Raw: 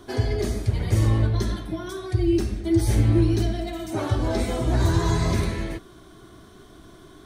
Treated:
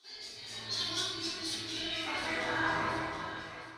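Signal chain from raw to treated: Doppler pass-by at 1.78 s, 7 m/s, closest 2.9 m; bass shelf 350 Hz -4 dB; reverse; compression 10:1, threshold -38 dBFS, peak gain reduction 16.5 dB; reverse; band-pass sweep 4.4 kHz -> 1 kHz, 2.81–5.81 s; plain phase-vocoder stretch 0.52×; on a send: echo whose repeats swap between lows and highs 360 ms, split 1.5 kHz, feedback 72%, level -6.5 dB; on the sum: level rider gain up to 10.5 dB; simulated room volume 270 m³, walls mixed, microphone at 3.6 m; trim +7.5 dB

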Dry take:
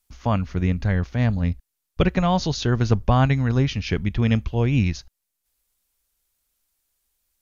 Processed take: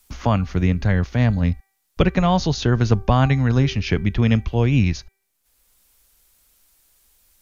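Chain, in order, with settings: de-hum 389 Hz, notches 6; three bands compressed up and down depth 40%; trim +2.5 dB

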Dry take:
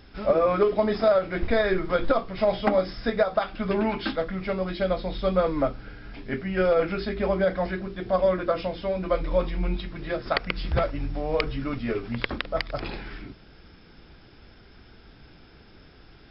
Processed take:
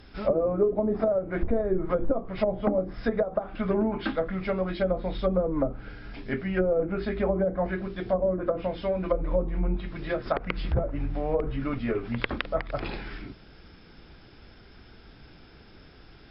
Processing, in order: low-pass that closes with the level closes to 500 Hz, closed at -19 dBFS

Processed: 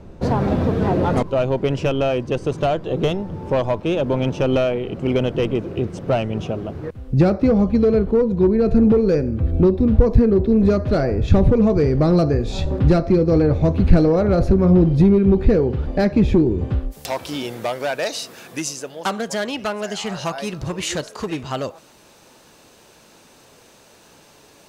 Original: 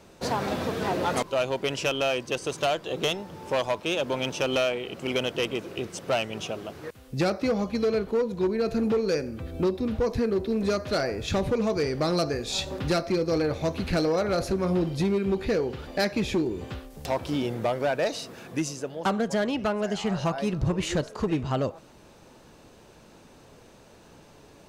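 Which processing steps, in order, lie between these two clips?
tilt EQ -4 dB/octave, from 16.91 s +2 dB/octave; trim +3.5 dB

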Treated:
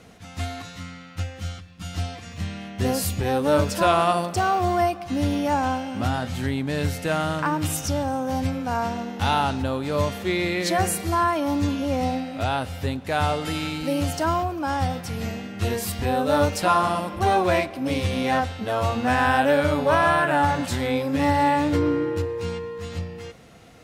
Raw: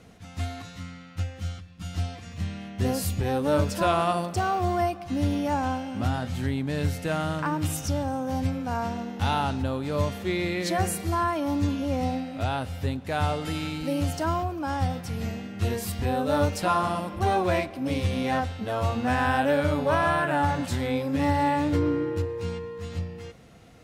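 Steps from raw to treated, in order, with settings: bass shelf 270 Hz -5 dB; trim +5 dB

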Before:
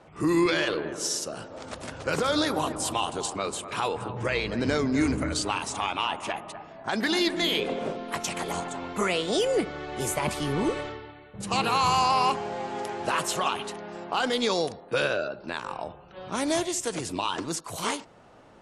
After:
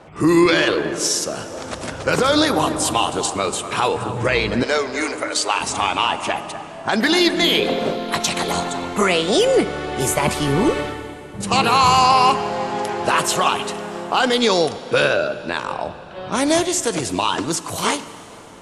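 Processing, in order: 4.63–5.61 s: high-pass 430 Hz 24 dB/octave; 7.62–8.85 s: peaking EQ 4 kHz +9 dB 0.36 oct; plate-style reverb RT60 4.1 s, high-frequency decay 0.9×, DRR 14.5 dB; trim +9 dB

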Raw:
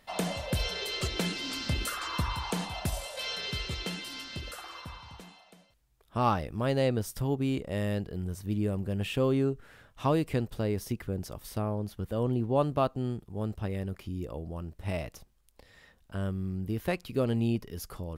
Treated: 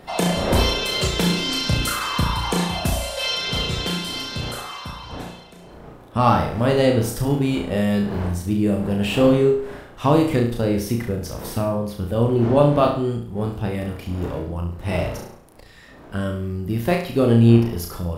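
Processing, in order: coarse spectral quantiser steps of 15 dB; wind noise 620 Hz -47 dBFS; flutter echo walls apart 5.9 m, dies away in 0.51 s; trim +9 dB

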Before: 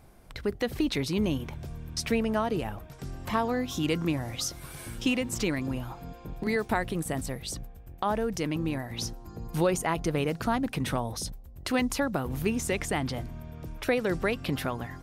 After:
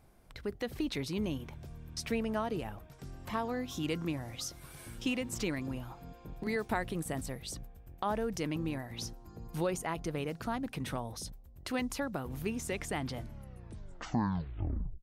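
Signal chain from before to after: tape stop on the ending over 1.85 s; gain riding within 5 dB 2 s; trim -8 dB

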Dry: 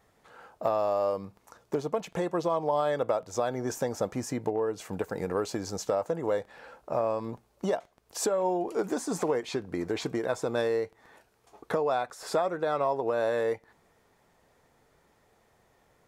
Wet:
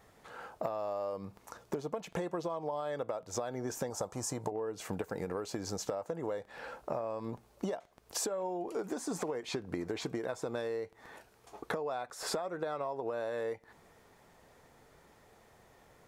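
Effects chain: 3.90–4.52 s: graphic EQ 250/1000/2000/8000 Hz -7/+7/-8/+7 dB; compression 10:1, threshold -37 dBFS, peak gain reduction 15.5 dB; trim +4 dB

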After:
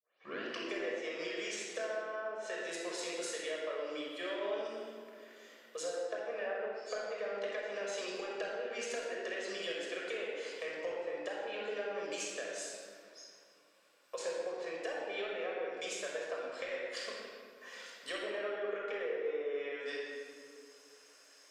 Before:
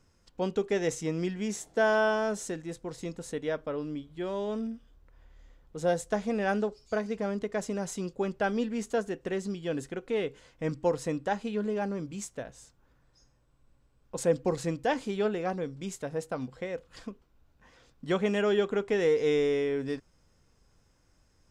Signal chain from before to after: tape start-up on the opening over 0.70 s; high-pass 550 Hz 24 dB/octave; low-pass that closes with the level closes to 1.1 kHz, closed at -30.5 dBFS; peaking EQ 820 Hz -10.5 dB 1.4 oct; compression 10:1, threshold -51 dBFS, peak gain reduction 20.5 dB; simulated room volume 3700 m³, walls mixed, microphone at 5.8 m; trim +8 dB

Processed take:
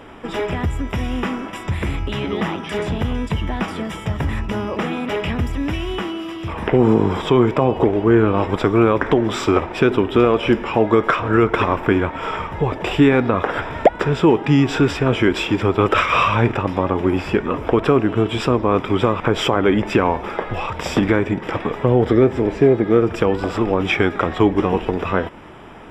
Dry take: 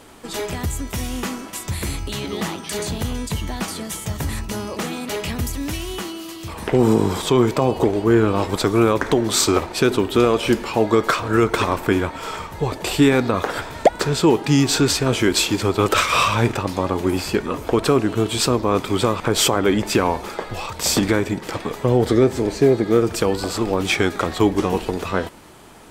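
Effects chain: in parallel at -0.5 dB: compression, threshold -26 dBFS, peak gain reduction 17 dB; on the sum: Savitzky-Golay filter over 25 samples

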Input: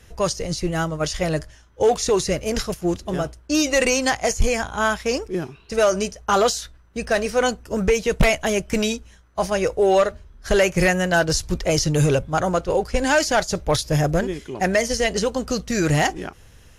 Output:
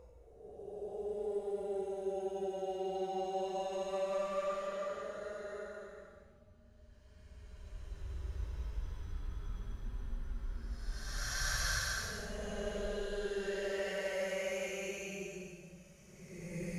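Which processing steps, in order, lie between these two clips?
inverted gate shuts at -27 dBFS, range -27 dB; Paulstretch 16×, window 0.10 s, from 9.73 s; trim +5 dB

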